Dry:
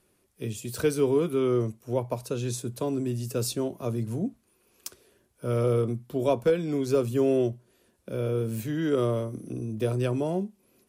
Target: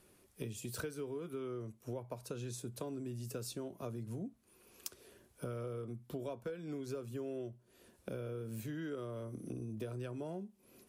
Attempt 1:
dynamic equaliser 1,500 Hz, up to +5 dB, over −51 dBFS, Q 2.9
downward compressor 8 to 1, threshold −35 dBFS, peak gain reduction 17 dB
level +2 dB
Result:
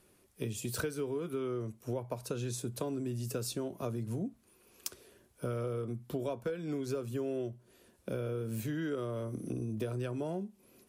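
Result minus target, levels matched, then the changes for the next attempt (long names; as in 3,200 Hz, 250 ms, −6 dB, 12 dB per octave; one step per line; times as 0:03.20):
downward compressor: peak gain reduction −6 dB
change: downward compressor 8 to 1, threshold −42 dBFS, peak gain reduction 23 dB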